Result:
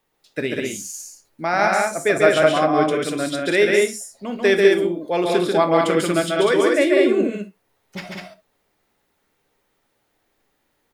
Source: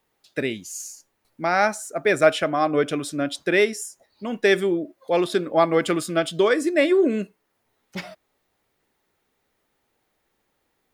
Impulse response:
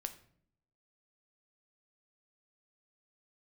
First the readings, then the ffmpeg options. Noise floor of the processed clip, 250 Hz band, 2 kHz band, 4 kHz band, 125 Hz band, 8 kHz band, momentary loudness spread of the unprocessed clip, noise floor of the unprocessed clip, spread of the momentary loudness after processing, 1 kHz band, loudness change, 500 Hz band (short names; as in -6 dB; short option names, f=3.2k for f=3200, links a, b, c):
-69 dBFS, +3.0 dB, +3.0 dB, +3.5 dB, +3.5 dB, +3.5 dB, 16 LU, -73 dBFS, 18 LU, +3.5 dB, +3.5 dB, +4.0 dB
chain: -filter_complex "[0:a]aecho=1:1:139.9|198.3:0.708|0.708[a];[1:a]atrim=start_sample=2205,atrim=end_sample=3528[b];[a][b]afir=irnorm=-1:irlink=0,volume=2.5dB"